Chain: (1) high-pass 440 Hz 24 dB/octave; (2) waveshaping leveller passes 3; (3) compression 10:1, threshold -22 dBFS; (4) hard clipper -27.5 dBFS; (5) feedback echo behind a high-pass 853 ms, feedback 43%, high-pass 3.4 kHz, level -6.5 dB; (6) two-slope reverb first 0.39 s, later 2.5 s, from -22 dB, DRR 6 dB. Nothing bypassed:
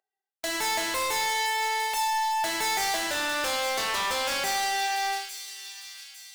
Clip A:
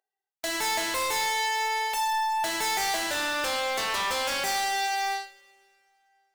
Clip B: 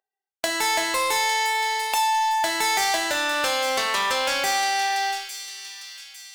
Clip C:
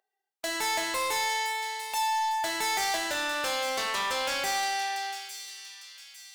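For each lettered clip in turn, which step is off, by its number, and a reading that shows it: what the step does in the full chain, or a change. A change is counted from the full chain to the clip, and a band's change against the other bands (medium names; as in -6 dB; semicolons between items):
5, momentary loudness spread change -8 LU; 4, distortion -10 dB; 2, loudness change -2.0 LU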